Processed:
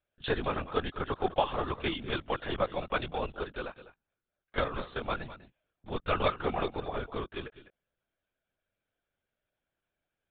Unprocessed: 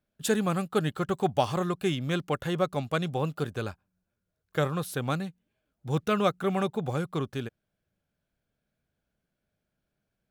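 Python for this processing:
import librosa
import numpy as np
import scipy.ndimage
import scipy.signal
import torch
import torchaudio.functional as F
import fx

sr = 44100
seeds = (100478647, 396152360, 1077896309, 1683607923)

y = fx.highpass(x, sr, hz=520.0, slope=6)
y = y + 10.0 ** (-14.5 / 20.0) * np.pad(y, (int(204 * sr / 1000.0), 0))[:len(y)]
y = fx.lpc_vocoder(y, sr, seeds[0], excitation='whisper', order=16)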